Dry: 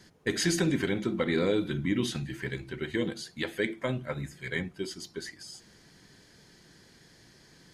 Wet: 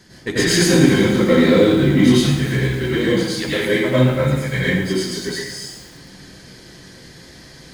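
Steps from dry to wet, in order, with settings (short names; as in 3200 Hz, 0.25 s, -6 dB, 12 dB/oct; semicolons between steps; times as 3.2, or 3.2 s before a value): in parallel at -5.5 dB: hard clip -32 dBFS, distortion -5 dB; on the sum: plate-style reverb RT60 0.78 s, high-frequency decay 0.9×, pre-delay 80 ms, DRR -8.5 dB; lo-fi delay 0.112 s, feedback 80%, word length 6-bit, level -14.5 dB; gain +2.5 dB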